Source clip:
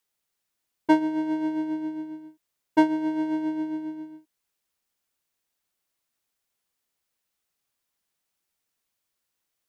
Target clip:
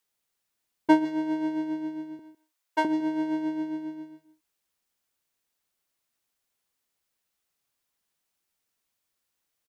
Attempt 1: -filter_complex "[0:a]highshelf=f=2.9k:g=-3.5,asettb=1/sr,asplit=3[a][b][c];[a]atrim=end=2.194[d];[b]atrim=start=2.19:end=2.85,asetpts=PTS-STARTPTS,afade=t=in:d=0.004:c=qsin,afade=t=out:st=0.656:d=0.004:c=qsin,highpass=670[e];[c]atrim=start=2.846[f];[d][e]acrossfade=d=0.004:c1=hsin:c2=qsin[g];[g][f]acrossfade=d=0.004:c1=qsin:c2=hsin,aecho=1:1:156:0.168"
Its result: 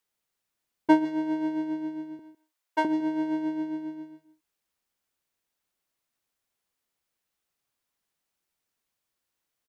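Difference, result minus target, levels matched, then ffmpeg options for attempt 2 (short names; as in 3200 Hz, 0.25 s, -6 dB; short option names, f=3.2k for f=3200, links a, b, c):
8000 Hz band -3.0 dB
-filter_complex "[0:a]asettb=1/sr,asplit=3[a][b][c];[a]atrim=end=2.194[d];[b]atrim=start=2.19:end=2.85,asetpts=PTS-STARTPTS,afade=t=in:d=0.004:c=qsin,afade=t=out:st=0.656:d=0.004:c=qsin,highpass=670[e];[c]atrim=start=2.846[f];[d][e]acrossfade=d=0.004:c1=hsin:c2=qsin[g];[g][f]acrossfade=d=0.004:c1=qsin:c2=hsin,aecho=1:1:156:0.168"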